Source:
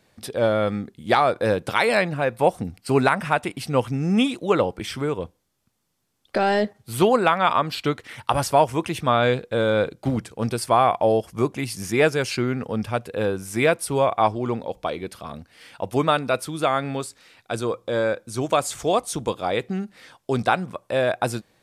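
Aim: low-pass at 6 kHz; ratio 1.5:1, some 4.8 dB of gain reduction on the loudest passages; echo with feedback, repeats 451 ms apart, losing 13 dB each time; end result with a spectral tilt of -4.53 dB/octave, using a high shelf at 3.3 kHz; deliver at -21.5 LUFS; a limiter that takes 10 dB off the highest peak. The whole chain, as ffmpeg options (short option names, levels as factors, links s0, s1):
-af "lowpass=6000,highshelf=f=3300:g=3.5,acompressor=threshold=0.0501:ratio=1.5,alimiter=limit=0.15:level=0:latency=1,aecho=1:1:451|902|1353:0.224|0.0493|0.0108,volume=2.24"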